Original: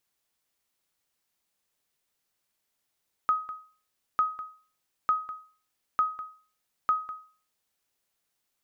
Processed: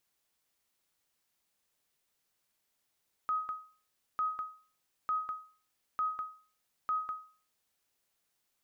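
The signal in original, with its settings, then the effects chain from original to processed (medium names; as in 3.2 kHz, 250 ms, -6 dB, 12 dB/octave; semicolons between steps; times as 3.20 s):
sonar ping 1.26 kHz, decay 0.41 s, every 0.90 s, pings 5, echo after 0.20 s, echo -15 dB -17 dBFS
peak limiter -28 dBFS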